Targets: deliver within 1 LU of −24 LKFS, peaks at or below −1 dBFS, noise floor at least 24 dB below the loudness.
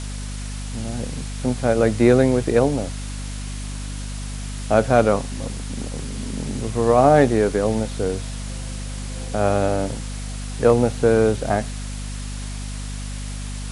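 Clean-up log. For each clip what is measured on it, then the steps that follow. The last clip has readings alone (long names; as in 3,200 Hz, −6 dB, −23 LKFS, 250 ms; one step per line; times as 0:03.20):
mains hum 50 Hz; hum harmonics up to 250 Hz; level of the hum −27 dBFS; background noise floor −30 dBFS; target noise floor −46 dBFS; integrated loudness −22.0 LKFS; sample peak −2.0 dBFS; target loudness −24.0 LKFS
→ mains-hum notches 50/100/150/200/250 Hz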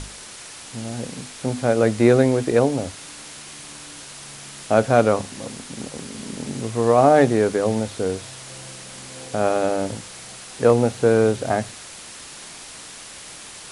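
mains hum none found; background noise floor −40 dBFS; target noise floor −44 dBFS
→ broadband denoise 6 dB, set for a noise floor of −40 dBFS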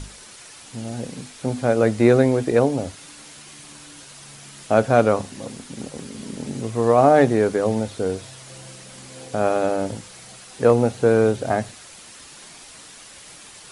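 background noise floor −44 dBFS; integrated loudness −20.0 LKFS; sample peak −2.5 dBFS; target loudness −24.0 LKFS
→ level −4 dB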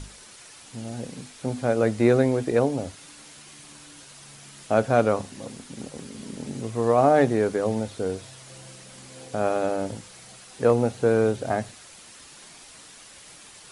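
integrated loudness −24.0 LKFS; sample peak −6.5 dBFS; background noise floor −48 dBFS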